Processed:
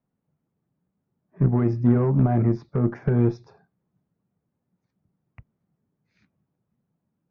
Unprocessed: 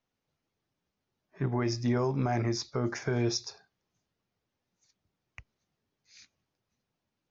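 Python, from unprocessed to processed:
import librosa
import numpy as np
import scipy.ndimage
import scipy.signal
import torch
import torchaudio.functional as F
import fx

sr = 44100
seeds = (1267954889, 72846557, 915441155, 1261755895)

y = scipy.signal.sosfilt(scipy.signal.butter(2, 1300.0, 'lowpass', fs=sr, output='sos'), x)
y = fx.peak_eq(y, sr, hz=170.0, db=13.0, octaves=1.3)
y = fx.cheby_harmonics(y, sr, harmonics=(2, 5, 7), levels_db=(-14, -26, -26), full_scale_db=-11.0)
y = F.gain(torch.from_numpy(y), 2.0).numpy()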